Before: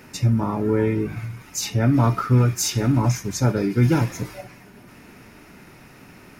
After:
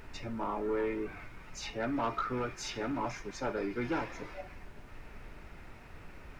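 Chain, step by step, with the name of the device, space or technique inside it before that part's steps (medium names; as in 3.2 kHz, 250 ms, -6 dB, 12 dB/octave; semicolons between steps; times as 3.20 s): aircraft cabin announcement (band-pass 420–3000 Hz; saturation -19.5 dBFS, distortion -17 dB; brown noise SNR 10 dB); trim -5.5 dB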